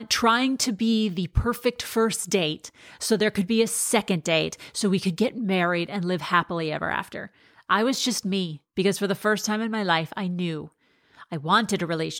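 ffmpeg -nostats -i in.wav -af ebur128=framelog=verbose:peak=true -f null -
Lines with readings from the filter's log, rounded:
Integrated loudness:
  I:         -24.4 LUFS
  Threshold: -34.8 LUFS
Loudness range:
  LRA:         2.0 LU
  Threshold: -44.9 LUFS
  LRA low:   -25.9 LUFS
  LRA high:  -23.9 LUFS
True peak:
  Peak:       -6.5 dBFS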